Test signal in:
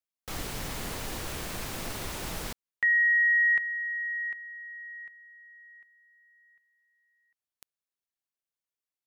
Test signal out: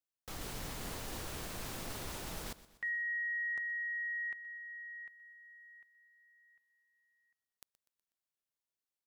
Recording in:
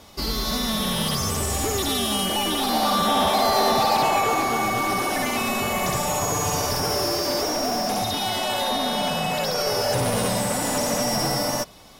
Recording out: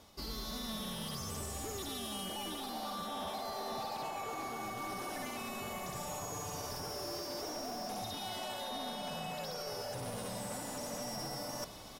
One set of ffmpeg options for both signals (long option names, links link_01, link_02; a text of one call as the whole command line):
ffmpeg -i in.wav -af "equalizer=frequency=2200:width_type=o:width=0.77:gain=-2,areverse,acompressor=threshold=-31dB:ratio=16:attack=0.61:release=729:detection=rms,areverse,aecho=1:1:123|246|369|492:0.133|0.068|0.0347|0.0177,volume=-2.5dB" out.wav